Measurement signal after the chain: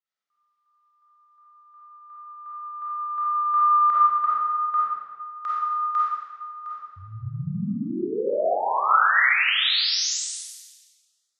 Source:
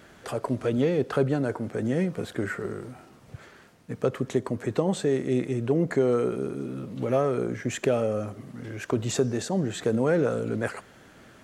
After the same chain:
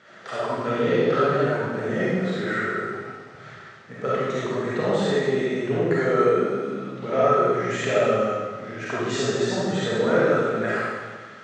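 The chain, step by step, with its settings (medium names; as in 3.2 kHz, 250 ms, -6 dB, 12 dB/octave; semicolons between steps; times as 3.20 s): cabinet simulation 150–6500 Hz, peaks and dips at 290 Hz -8 dB, 1.3 kHz +7 dB, 1.9 kHz +6 dB, 3.6 kHz +3 dB; algorithmic reverb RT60 1.5 s, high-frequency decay 0.95×, pre-delay 10 ms, DRR -9 dB; trim -4.5 dB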